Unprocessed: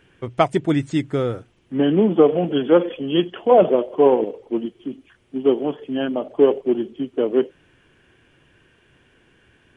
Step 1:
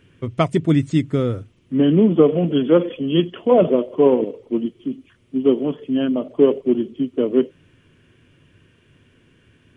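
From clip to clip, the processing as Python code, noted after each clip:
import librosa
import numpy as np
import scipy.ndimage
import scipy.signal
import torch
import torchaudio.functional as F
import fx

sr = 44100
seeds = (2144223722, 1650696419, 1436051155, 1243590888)

y = fx.graphic_eq_31(x, sr, hz=(100, 160, 250, 800, 1600), db=(11, 7, 6, -10, -5))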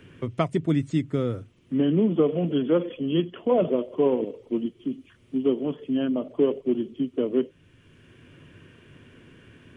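y = fx.band_squash(x, sr, depth_pct=40)
y = F.gain(torch.from_numpy(y), -6.5).numpy()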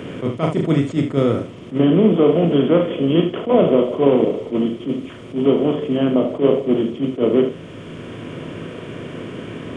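y = fx.bin_compress(x, sr, power=0.6)
y = fx.room_early_taps(y, sr, ms=(36, 74), db=(-7.0, -9.5))
y = fx.attack_slew(y, sr, db_per_s=250.0)
y = F.gain(torch.from_numpy(y), 4.0).numpy()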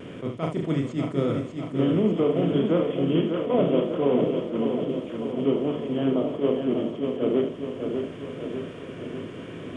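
y = fx.vibrato(x, sr, rate_hz=0.85, depth_cents=23.0)
y = fx.echo_feedback(y, sr, ms=597, feedback_pct=60, wet_db=-6.0)
y = F.gain(torch.from_numpy(y), -8.5).numpy()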